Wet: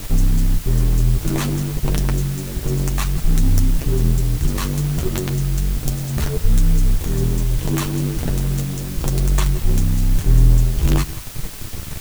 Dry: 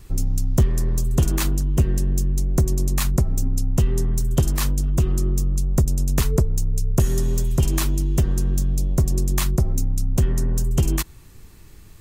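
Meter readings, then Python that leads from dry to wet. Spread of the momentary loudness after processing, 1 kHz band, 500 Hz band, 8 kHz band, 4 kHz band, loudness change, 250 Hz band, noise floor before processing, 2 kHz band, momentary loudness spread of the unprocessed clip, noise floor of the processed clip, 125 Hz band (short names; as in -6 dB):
6 LU, +3.0 dB, +1.0 dB, 0.0 dB, +3.5 dB, +2.0 dB, +3.0 dB, -44 dBFS, +4.0 dB, 3 LU, -29 dBFS, +2.0 dB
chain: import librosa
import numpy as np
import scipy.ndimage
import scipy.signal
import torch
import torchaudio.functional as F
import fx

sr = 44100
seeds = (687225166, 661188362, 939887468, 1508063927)

p1 = fx.high_shelf(x, sr, hz=7600.0, db=-10.5)
p2 = fx.quant_companded(p1, sr, bits=2)
p3 = p1 + F.gain(torch.from_numpy(p2), -3.0).numpy()
p4 = fx.over_compress(p3, sr, threshold_db=-16.0, ratio=-0.5)
p5 = fx.chorus_voices(p4, sr, voices=4, hz=0.95, base_ms=10, depth_ms=3.6, mix_pct=40)
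p6 = fx.low_shelf(p5, sr, hz=310.0, db=6.5)
p7 = fx.notch(p6, sr, hz=5000.0, q=12.0)
p8 = p7 + fx.echo_single(p7, sr, ms=172, db=-18.0, dry=0)
y = fx.quant_dither(p8, sr, seeds[0], bits=6, dither='triangular')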